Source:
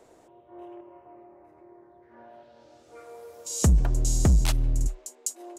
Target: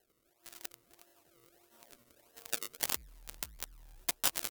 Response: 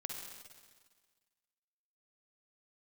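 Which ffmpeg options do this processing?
-af "asetrate=54684,aresample=44100,tremolo=f=11:d=0.42,acrusher=samples=29:mix=1:aa=0.000001:lfo=1:lforange=29:lforate=1.6,asetrate=35002,aresample=44100,atempo=1.25992,asoftclip=type=tanh:threshold=-20dB,alimiter=level_in=2.5dB:limit=-24dB:level=0:latency=1:release=14,volume=-2.5dB,equalizer=f=140:t=o:w=2.1:g=-5.5,aecho=1:1:195|390|585|780:0.112|0.0583|0.0303|0.0158,areverse,acompressor=threshold=-41dB:ratio=16,areverse,aemphasis=mode=production:type=75kf,aeval=exprs='0.0668*(cos(1*acos(clip(val(0)/0.0668,-1,1)))-cos(1*PI/2))+0.0299*(cos(3*acos(clip(val(0)/0.0668,-1,1)))-cos(3*PI/2))+0.00376*(cos(5*acos(clip(val(0)/0.0668,-1,1)))-cos(5*PI/2))':c=same,dynaudnorm=f=240:g=9:m=7.5dB,volume=7dB"

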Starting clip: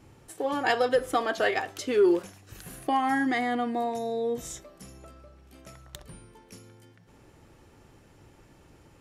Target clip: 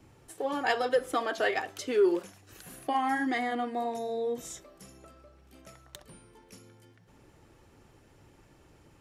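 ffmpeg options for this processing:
-filter_complex "[0:a]acrossover=split=180|1600|3600[a][b][c][d];[a]acompressor=threshold=-56dB:ratio=6[e];[e][b][c][d]amix=inputs=4:normalize=0,flanger=delay=0.2:depth=2.9:regen=-64:speed=1.8:shape=triangular,volume=1.5dB"

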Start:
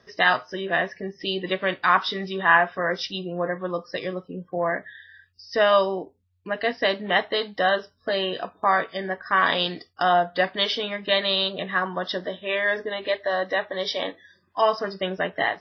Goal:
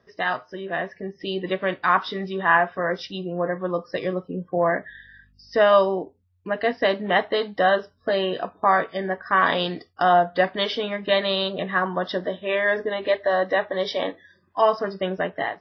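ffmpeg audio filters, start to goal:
-filter_complex "[0:a]highshelf=f=2.3k:g=-10,dynaudnorm=f=690:g=3:m=8dB,asettb=1/sr,asplit=3[a][b][c];[a]atrim=end=4.894[d];[b]atrim=start=4.89:end=5.58,asetpts=PTS-STARTPTS,afade=t=in:d=0.004:c=qsin,afade=t=out:st=0.686:d=0.004:c=qsin,aeval=exprs='val(0)+0.00178*(sin(2*PI*50*n/s)+sin(2*PI*2*50*n/s)/2+sin(2*PI*3*50*n/s)/3+sin(2*PI*4*50*n/s)/4+sin(2*PI*5*50*n/s)/5)':c=same[e];[c]atrim=start=5.576[f];[d][e]acrossfade=d=0.004:c1=hsin:c2=qsin[g];[g][f]acrossfade=d=0.004:c1=qsin:c2=hsin,volume=-3dB"

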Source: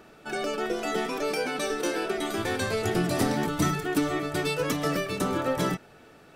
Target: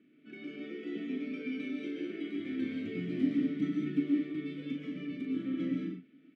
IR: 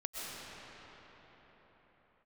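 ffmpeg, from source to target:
-filter_complex "[0:a]highpass=170,bass=f=250:g=14,treble=f=4k:g=-12,asettb=1/sr,asplit=3[a][b][c];[a]atrim=end=4.314[d];[b]atrim=start=4.31:end=5.3,asetpts=PTS-STARTPTS,afade=t=in:d=0.004:c=qsin,afade=t=out:st=0.986:d=0.004:c=qsin,acompressor=threshold=-25dB:ratio=3[e];[c]atrim=start=5.296[f];[d][e]acrossfade=d=0.004:c1=hsin:c2=qsin[g];[g][f]acrossfade=d=0.004:c1=qsin:c2=hsin,asplit=3[h][i][j];[h]bandpass=f=270:t=q:w=8,volume=0dB[k];[i]bandpass=f=2.29k:t=q:w=8,volume=-6dB[l];[j]bandpass=f=3.01k:t=q:w=8,volume=-9dB[m];[k][l][m]amix=inputs=3:normalize=0,asplit=2[n][o];[o]adelay=39,volume=-6dB[p];[n][p]amix=inputs=2:normalize=0[q];[1:a]atrim=start_sample=2205,afade=t=out:st=0.28:d=0.01,atrim=end_sample=12789[r];[q][r]afir=irnorm=-1:irlink=0"

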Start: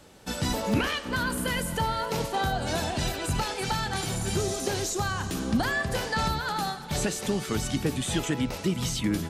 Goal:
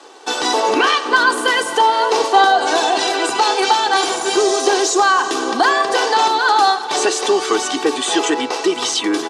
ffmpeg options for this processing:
-filter_complex "[0:a]aecho=1:1:2.6:0.62,asplit=2[a][b];[b]alimiter=limit=-21dB:level=0:latency=1,volume=-2.5dB[c];[a][c]amix=inputs=2:normalize=0,aeval=exprs='sgn(val(0))*max(abs(val(0))-0.00168,0)':c=same,highpass=f=330:w=0.5412,highpass=f=330:w=1.3066,equalizer=f=1k:t=q:w=4:g=9,equalizer=f=2.2k:t=q:w=4:g=-5,equalizer=f=7.3k:t=q:w=4:g=-3,lowpass=f=8.1k:w=0.5412,lowpass=f=8.1k:w=1.3066,volume=9dB"

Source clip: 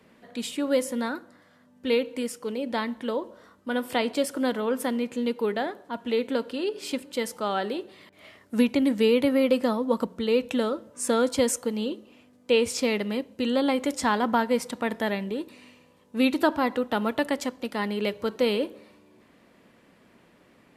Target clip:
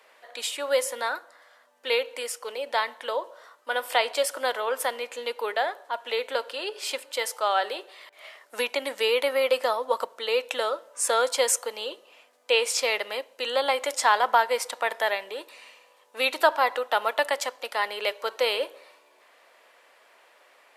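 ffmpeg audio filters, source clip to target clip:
-af "highpass=f=570:w=0.5412,highpass=f=570:w=1.3066,volume=5dB"

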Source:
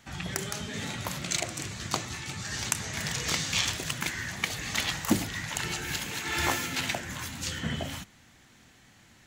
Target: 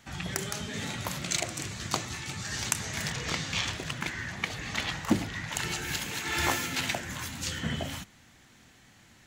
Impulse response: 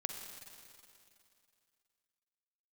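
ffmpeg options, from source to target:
-filter_complex "[0:a]asettb=1/sr,asplit=3[a][b][c];[a]atrim=end=3.104[d];[b]atrim=start=3.1:end=5.52,asetpts=PTS-STARTPTS,afade=t=in:d=0.004:c=qsin,afade=t=out:st=2.416:d=0.004:c=qsin,aemphasis=mode=reproduction:type=50kf[e];[c]atrim=start=5.516[f];[d][e]acrossfade=d=0.004:c1=hsin:c2=qsin[g];[g][f]acrossfade=d=0.004:c1=qsin:c2=hsin"

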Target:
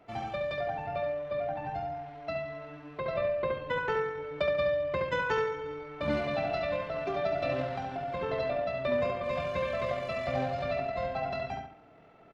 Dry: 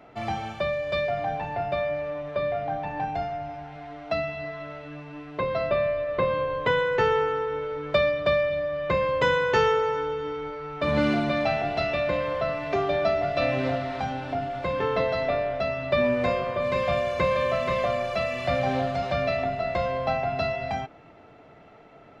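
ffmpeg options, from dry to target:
-filter_complex "[0:a]atempo=1.8,asplit=2[a][b];[b]adelay=70,lowpass=f=4.4k:p=1,volume=-4dB,asplit=2[c][d];[d]adelay=70,lowpass=f=4.4k:p=1,volume=0.35,asplit=2[e][f];[f]adelay=70,lowpass=f=4.4k:p=1,volume=0.35,asplit=2[g][h];[h]adelay=70,lowpass=f=4.4k:p=1,volume=0.35[i];[a][c][e][g][i]amix=inputs=5:normalize=0,volume=-7.5dB"

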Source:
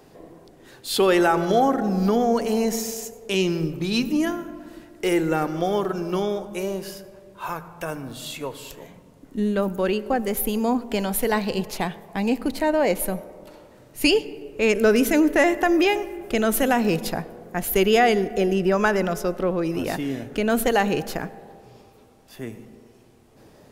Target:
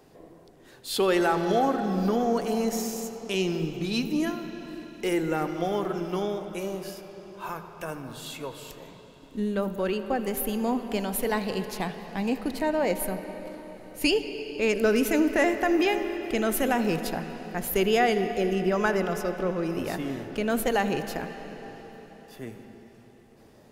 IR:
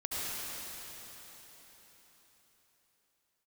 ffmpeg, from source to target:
-filter_complex "[0:a]asplit=2[a][b];[b]lowpass=5.3k[c];[1:a]atrim=start_sample=2205,adelay=79[d];[c][d]afir=irnorm=-1:irlink=0,volume=-15dB[e];[a][e]amix=inputs=2:normalize=0,volume=-5dB"

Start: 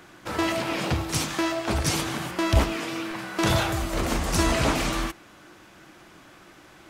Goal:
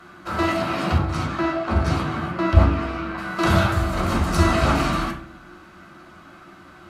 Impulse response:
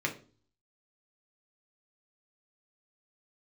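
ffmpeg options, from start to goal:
-filter_complex "[0:a]asettb=1/sr,asplit=3[a][b][c];[a]atrim=end=0.984[d];[b]atrim=start=0.98:end=3.18,asetpts=PTS-STARTPTS,afade=t=in:d=0.004:c=qsin,afade=t=out:st=2.196:d=0.004:c=qsin,lowpass=f=2.2k:p=1[e];[c]atrim=start=3.176[f];[d][e]acrossfade=d=0.004:c1=hsin:c2=qsin[g];[g][f]acrossfade=d=0.004:c1=qsin:c2=hsin[h];[1:a]atrim=start_sample=2205,asetrate=27342,aresample=44100[i];[h][i]afir=irnorm=-1:irlink=0,volume=-5.5dB"

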